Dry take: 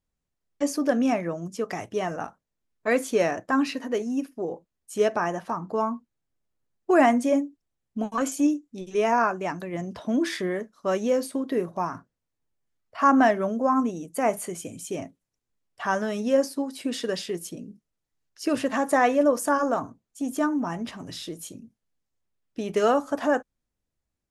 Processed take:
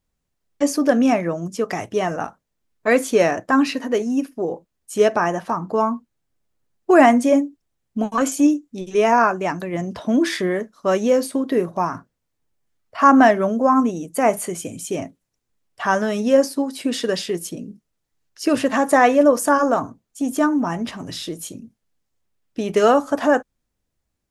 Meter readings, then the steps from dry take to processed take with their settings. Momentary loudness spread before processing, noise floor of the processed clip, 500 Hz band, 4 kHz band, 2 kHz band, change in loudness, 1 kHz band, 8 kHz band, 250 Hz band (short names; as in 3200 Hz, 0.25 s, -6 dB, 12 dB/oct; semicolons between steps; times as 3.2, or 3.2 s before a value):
15 LU, -77 dBFS, +6.5 dB, +6.5 dB, +6.5 dB, +6.5 dB, +6.5 dB, +6.5 dB, +6.5 dB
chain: short-mantissa float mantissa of 8-bit; gain +6.5 dB